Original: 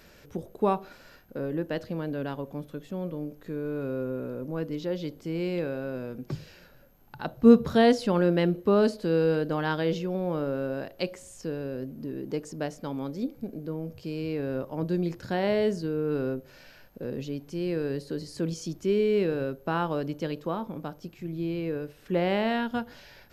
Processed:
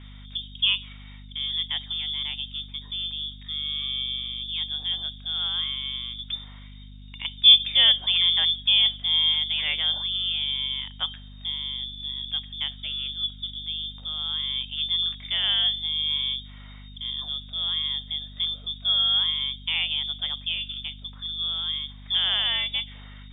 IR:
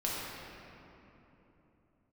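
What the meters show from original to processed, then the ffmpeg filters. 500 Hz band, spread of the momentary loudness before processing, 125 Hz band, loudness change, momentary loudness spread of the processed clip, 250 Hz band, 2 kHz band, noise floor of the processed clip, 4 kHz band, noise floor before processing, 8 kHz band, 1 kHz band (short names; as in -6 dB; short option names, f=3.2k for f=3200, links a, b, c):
under -25 dB, 14 LU, -9.0 dB, +5.5 dB, 14 LU, -22.0 dB, +4.0 dB, -43 dBFS, +24.5 dB, -55 dBFS, under -30 dB, -10.5 dB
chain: -af "lowpass=f=3.1k:t=q:w=0.5098,lowpass=f=3.1k:t=q:w=0.6013,lowpass=f=3.1k:t=q:w=0.9,lowpass=f=3.1k:t=q:w=2.563,afreqshift=-3700,aeval=exprs='val(0)+0.00631*(sin(2*PI*50*n/s)+sin(2*PI*2*50*n/s)/2+sin(2*PI*3*50*n/s)/3+sin(2*PI*4*50*n/s)/4+sin(2*PI*5*50*n/s)/5)':c=same,volume=1.5dB"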